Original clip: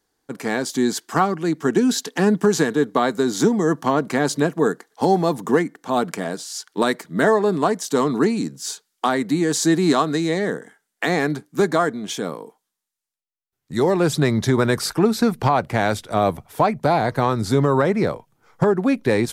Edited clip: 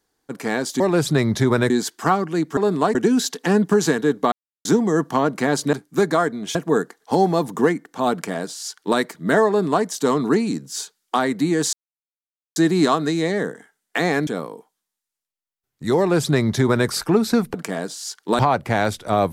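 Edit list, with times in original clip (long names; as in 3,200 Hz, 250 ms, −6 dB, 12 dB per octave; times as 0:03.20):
0:03.04–0:03.37: silence
0:06.03–0:06.88: duplicate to 0:15.43
0:07.38–0:07.76: duplicate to 0:01.67
0:09.63: splice in silence 0.83 s
0:11.34–0:12.16: move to 0:04.45
0:13.87–0:14.77: duplicate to 0:00.80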